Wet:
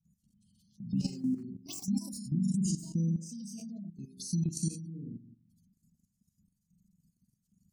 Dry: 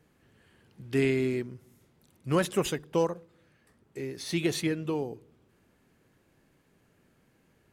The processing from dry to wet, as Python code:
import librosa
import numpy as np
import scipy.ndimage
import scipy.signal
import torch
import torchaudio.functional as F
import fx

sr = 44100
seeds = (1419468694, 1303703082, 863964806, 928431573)

y = fx.room_flutter(x, sr, wall_m=7.3, rt60_s=0.76)
y = fx.echo_pitch(y, sr, ms=255, semitones=6, count=2, db_per_echo=-3.0)
y = fx.curve_eq(y, sr, hz=(130.0, 200.0, 420.0, 770.0, 1800.0, 2800.0, 5400.0), db=(0, 13, -23, -20, -25, -3, 10))
y = fx.spec_gate(y, sr, threshold_db=-25, keep='strong')
y = fx.sample_gate(y, sr, floor_db=-44.5, at=(0.97, 1.43))
y = fx.env_phaser(y, sr, low_hz=270.0, high_hz=3500.0, full_db=-30.5)
y = fx.level_steps(y, sr, step_db=13)
y = fx.high_shelf(y, sr, hz=6700.0, db=-11.0, at=(2.28, 4.03))
y = y * librosa.db_to_amplitude(-2.5)